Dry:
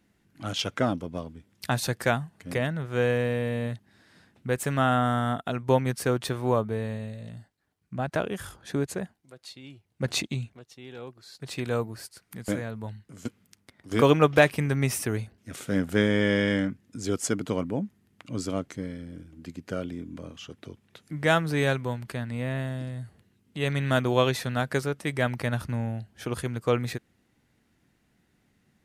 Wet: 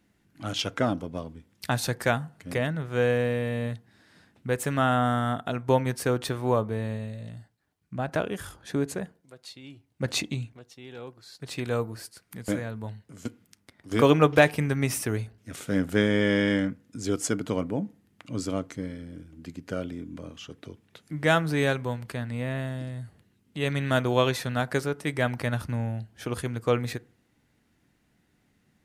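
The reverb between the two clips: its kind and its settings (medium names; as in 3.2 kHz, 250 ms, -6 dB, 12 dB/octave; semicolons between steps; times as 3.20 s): FDN reverb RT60 0.44 s, low-frequency decay 1×, high-frequency decay 0.45×, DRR 18 dB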